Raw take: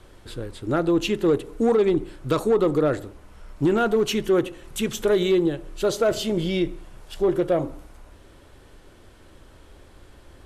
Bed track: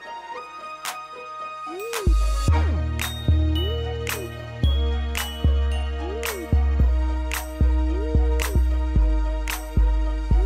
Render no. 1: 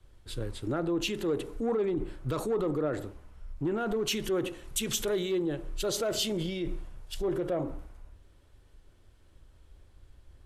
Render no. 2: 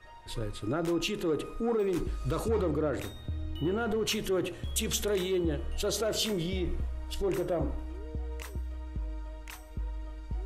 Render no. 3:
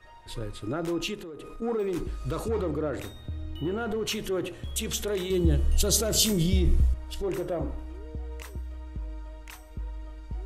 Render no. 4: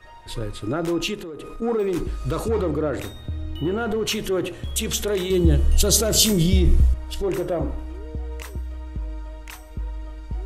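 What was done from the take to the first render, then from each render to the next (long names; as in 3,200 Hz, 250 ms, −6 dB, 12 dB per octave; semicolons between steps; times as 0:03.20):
brickwall limiter −24 dBFS, peak gain reduction 11.5 dB; multiband upward and downward expander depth 70%
mix in bed track −17 dB
0:01.14–0:01.62: downward compressor 12 to 1, threshold −37 dBFS; 0:05.30–0:06.94: bass and treble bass +12 dB, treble +13 dB
level +6 dB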